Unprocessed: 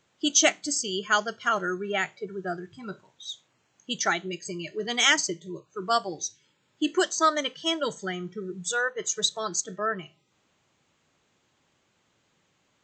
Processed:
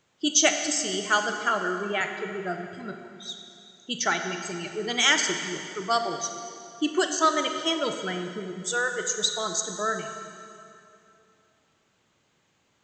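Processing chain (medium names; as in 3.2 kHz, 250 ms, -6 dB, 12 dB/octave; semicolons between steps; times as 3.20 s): 1.49–2.01 s: Chebyshev band-pass 190–4300 Hz, order 4; on a send: reverberation RT60 2.8 s, pre-delay 28 ms, DRR 5.5 dB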